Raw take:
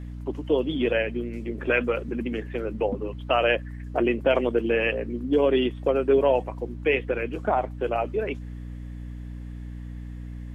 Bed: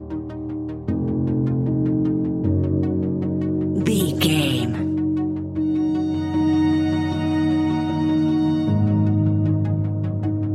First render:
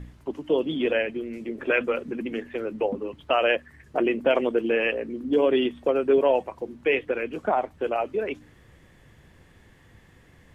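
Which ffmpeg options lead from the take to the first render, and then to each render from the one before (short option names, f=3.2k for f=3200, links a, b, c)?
-af "bandreject=f=60:t=h:w=4,bandreject=f=120:t=h:w=4,bandreject=f=180:t=h:w=4,bandreject=f=240:t=h:w=4,bandreject=f=300:t=h:w=4"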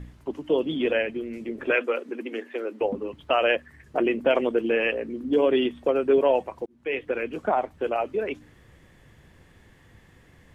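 -filter_complex "[0:a]asettb=1/sr,asplit=3[a][b][c];[a]atrim=end=1.754[d];[b]atrim=start=1.75:end=2.81,asetpts=PTS-STARTPTS,afade=t=in:d=0.004:c=qsin,afade=t=out:st=1.056:d=0.004:c=qsin,highpass=f=280:w=0.5412,highpass=f=280:w=1.3066[e];[c]atrim=start=2.806[f];[d][e]acrossfade=d=0.004:c1=hsin:c2=qsin[g];[g][f]acrossfade=d=0.004:c1=qsin:c2=hsin,asplit=2[h][i];[h]atrim=end=6.66,asetpts=PTS-STARTPTS,afade=t=out:st=6.656:d=0.004:c=hsin[j];[i]atrim=start=6.66,asetpts=PTS-STARTPTS,afade=t=in:d=0.5[k];[j][k]concat=n=2:v=0:a=1"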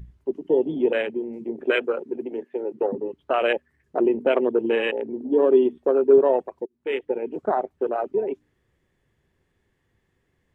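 -af "afwtdn=0.0355,equalizer=f=390:w=5.6:g=7.5"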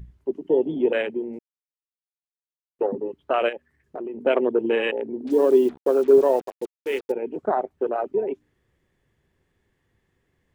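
-filter_complex "[0:a]asplit=3[a][b][c];[a]afade=t=out:st=3.48:d=0.02[d];[b]acompressor=threshold=-30dB:ratio=5:attack=3.2:release=140:knee=1:detection=peak,afade=t=in:st=3.48:d=0.02,afade=t=out:st=4.25:d=0.02[e];[c]afade=t=in:st=4.25:d=0.02[f];[d][e][f]amix=inputs=3:normalize=0,asettb=1/sr,asplit=3[g][h][i];[g]atrim=end=5.274[j];[h]atrim=start=5.27:end=7.12,asetpts=PTS-STARTPTS,afade=t=in:d=0.004:c=qsin,afade=t=out:st=1.846:d=0.004:c=qsin,acrusher=bits=6:mix=0:aa=0.5[k];[i]atrim=start=7.116[l];[j][k]acrossfade=d=0.004:c1=hsin:c2=qsin[m];[m][l]acrossfade=d=0.004:c1=qsin:c2=hsin,asplit=3[n][o][p];[n]atrim=end=1.39,asetpts=PTS-STARTPTS,afade=t=out:st=1.386:d=0.004:c=hsin[q];[o]atrim=start=1.39:end=2.79,asetpts=PTS-STARTPTS,volume=0[r];[p]atrim=start=2.79,asetpts=PTS-STARTPTS,afade=t=in:d=0.004:c=hsin[s];[q][r][s]concat=n=3:v=0:a=1"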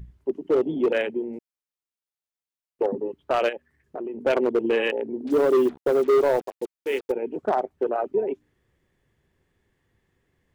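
-af "asoftclip=type=hard:threshold=-15dB"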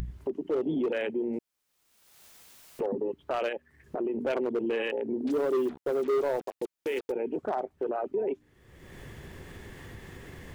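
-af "acompressor=mode=upward:threshold=-24dB:ratio=2.5,alimiter=limit=-23dB:level=0:latency=1:release=29"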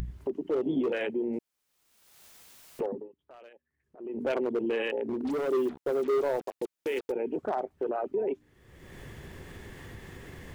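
-filter_complex "[0:a]asettb=1/sr,asplit=3[a][b][c];[a]atrim=end=0.634[d];[b]atrim=start=0.63:end=1.06,asetpts=PTS-STARTPTS,afade=t=in:d=0.004:c=qsin,afade=t=out:st=0.426:d=0.004:c=qsin,asplit=2[e][f];[f]adelay=15,volume=-7dB[g];[e][g]amix=inputs=2:normalize=0,atrim=end_sample=18963[h];[c]atrim=start=1.056[i];[d][h]acrossfade=d=0.004:c1=hsin:c2=qsin[j];[j][i]acrossfade=d=0.004:c1=qsin:c2=hsin,asettb=1/sr,asplit=3[k][l][m];[k]atrim=end=5.044[n];[l]atrim=start=5.04:end=5.48,asetpts=PTS-STARTPTS,afade=t=in:d=0.004:c=qsin,afade=t=out:st=0.436:d=0.004:c=qsin,volume=27.5dB,asoftclip=hard,volume=-27.5dB[o];[m]atrim=start=5.476[p];[n][o]acrossfade=d=0.004:c1=hsin:c2=qsin[q];[q][p]acrossfade=d=0.004:c1=qsin:c2=hsin,asplit=3[r][s][t];[r]atrim=end=3.09,asetpts=PTS-STARTPTS,afade=t=out:st=2.81:d=0.28:silence=0.0841395[u];[s]atrim=start=3.09:end=3.97,asetpts=PTS-STARTPTS,volume=-21.5dB[v];[t]atrim=start=3.97,asetpts=PTS-STARTPTS,afade=t=in:d=0.28:silence=0.0841395[w];[u][v][w]concat=n=3:v=0:a=1"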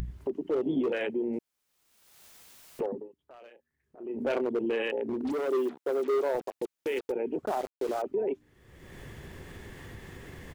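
-filter_complex "[0:a]asplit=3[a][b][c];[a]afade=t=out:st=3.4:d=0.02[d];[b]asplit=2[e][f];[f]adelay=33,volume=-9dB[g];[e][g]amix=inputs=2:normalize=0,afade=t=in:st=3.4:d=0.02,afade=t=out:st=4.4:d=0.02[h];[c]afade=t=in:st=4.4:d=0.02[i];[d][h][i]amix=inputs=3:normalize=0,asettb=1/sr,asplit=3[j][k][l];[j]atrim=end=5.324[m];[k]atrim=start=5.32:end=6.35,asetpts=PTS-STARTPTS,afade=t=in:d=0.004:c=qsin,afade=t=out:st=1.026:d=0.004:c=qsin,highpass=250[n];[l]atrim=start=6.346[o];[m][n]acrossfade=d=0.004:c1=hsin:c2=qsin[p];[p][o]acrossfade=d=0.004:c1=qsin:c2=hsin,asettb=1/sr,asplit=3[q][r][s];[q]atrim=end=7.464[t];[r]atrim=start=7.46:end=8.02,asetpts=PTS-STARTPTS,afade=t=in:d=0.004:c=qsin,afade=t=out:st=0.556:d=0.004:c=qsin,aeval=exprs='val(0)*gte(abs(val(0)),0.0112)':c=same[u];[s]atrim=start=8.016[v];[t][u]acrossfade=d=0.004:c1=hsin:c2=qsin[w];[w][v]acrossfade=d=0.004:c1=qsin:c2=hsin"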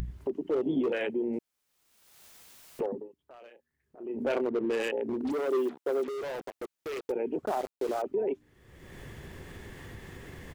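-filter_complex "[0:a]asettb=1/sr,asplit=3[a][b][c];[a]atrim=end=4.484[d];[b]atrim=start=4.48:end=4.89,asetpts=PTS-STARTPTS,afade=t=in:d=0.004:c=qsin,afade=t=out:st=0.406:d=0.004:c=qsin,adynamicsmooth=sensitivity=6.5:basefreq=670[e];[c]atrim=start=4.886[f];[d][e]acrossfade=d=0.004:c1=hsin:c2=qsin[g];[g][f]acrossfade=d=0.004:c1=qsin:c2=hsin,asettb=1/sr,asplit=3[h][i][j];[h]atrim=end=6.084[k];[i]atrim=start=6.08:end=7.09,asetpts=PTS-STARTPTS,afade=t=in:d=0.004:c=qsin,afade=t=out:st=1.006:d=0.004:c=qsin,volume=33.5dB,asoftclip=hard,volume=-33.5dB[l];[j]atrim=start=7.086[m];[k][l]acrossfade=d=0.004:c1=hsin:c2=qsin[n];[n][m]acrossfade=d=0.004:c1=qsin:c2=hsin"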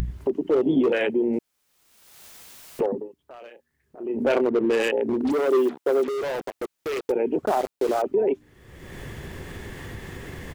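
-af "volume=8dB"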